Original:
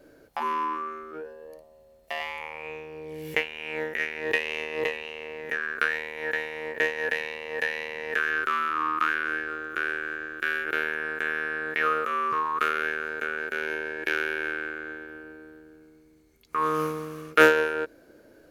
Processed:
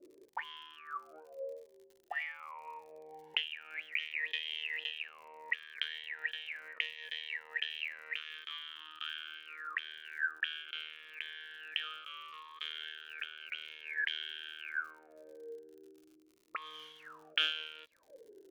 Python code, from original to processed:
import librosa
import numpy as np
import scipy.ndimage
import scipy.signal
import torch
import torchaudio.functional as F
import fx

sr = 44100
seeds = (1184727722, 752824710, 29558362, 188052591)

y = fx.auto_wah(x, sr, base_hz=330.0, top_hz=3200.0, q=18.0, full_db=-26.5, direction='up')
y = fx.dmg_crackle(y, sr, seeds[0], per_s=68.0, level_db=-61.0)
y = fx.notch_cascade(y, sr, direction='falling', hz=0.73)
y = F.gain(torch.from_numpy(y), 10.5).numpy()